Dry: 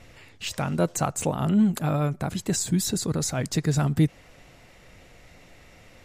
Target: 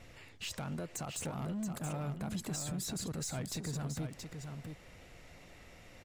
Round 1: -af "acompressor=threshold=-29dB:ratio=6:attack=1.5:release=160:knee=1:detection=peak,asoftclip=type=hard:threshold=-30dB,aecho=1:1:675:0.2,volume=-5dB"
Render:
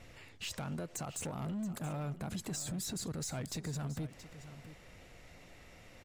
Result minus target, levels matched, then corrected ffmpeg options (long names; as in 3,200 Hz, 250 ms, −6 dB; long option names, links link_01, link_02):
echo-to-direct −7.5 dB
-af "acompressor=threshold=-29dB:ratio=6:attack=1.5:release=160:knee=1:detection=peak,asoftclip=type=hard:threshold=-30dB,aecho=1:1:675:0.473,volume=-5dB"